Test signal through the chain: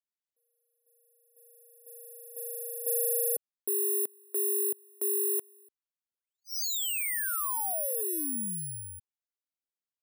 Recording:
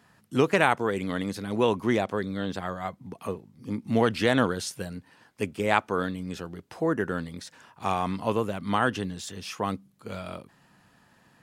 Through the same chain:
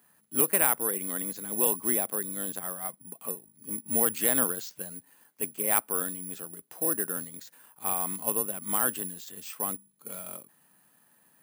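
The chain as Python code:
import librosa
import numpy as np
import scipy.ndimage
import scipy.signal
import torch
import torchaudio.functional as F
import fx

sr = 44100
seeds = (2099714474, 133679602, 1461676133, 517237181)

y = scipy.signal.sosfilt(scipy.signal.butter(2, 180.0, 'highpass', fs=sr, output='sos'), x)
y = (np.kron(scipy.signal.resample_poly(y, 1, 4), np.eye(4)[0]) * 4)[:len(y)]
y = y * 10.0 ** (-8.0 / 20.0)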